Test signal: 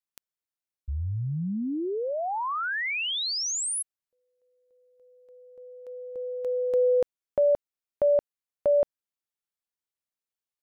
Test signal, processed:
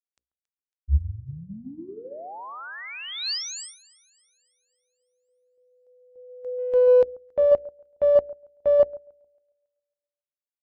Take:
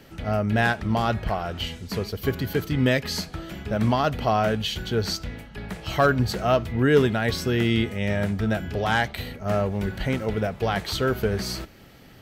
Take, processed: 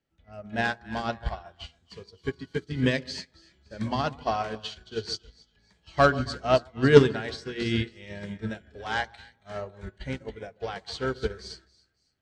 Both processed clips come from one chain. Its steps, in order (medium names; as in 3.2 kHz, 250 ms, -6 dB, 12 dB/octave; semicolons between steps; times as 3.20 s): on a send: two-band feedback delay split 1.5 kHz, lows 138 ms, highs 276 ms, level -10 dB; on the sum: dynamic bell 4.5 kHz, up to +5 dB, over -45 dBFS, Q 2.5; hum notches 60/120/180/240/300/360/420/480/540 Hz; in parallel at -10 dB: one-sided clip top -23 dBFS; on the sum: spectral noise reduction 8 dB; steep low-pass 8.6 kHz 36 dB/octave; peaking EQ 66 Hz +14 dB 0.31 oct; upward expansion 2.5:1, over -33 dBFS; trim +4 dB